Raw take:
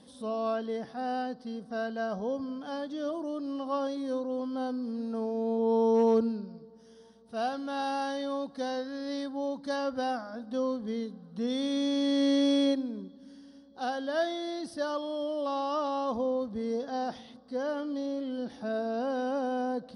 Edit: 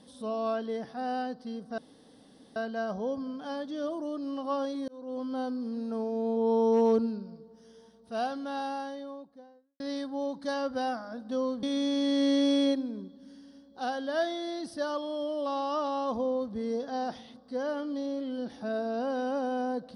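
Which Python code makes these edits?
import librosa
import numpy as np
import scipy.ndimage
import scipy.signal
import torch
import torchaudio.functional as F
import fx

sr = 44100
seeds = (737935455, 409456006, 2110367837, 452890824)

y = fx.studio_fade_out(x, sr, start_s=7.4, length_s=1.62)
y = fx.edit(y, sr, fx.insert_room_tone(at_s=1.78, length_s=0.78),
    fx.fade_in_span(start_s=4.1, length_s=0.37),
    fx.cut(start_s=10.85, length_s=0.78), tone=tone)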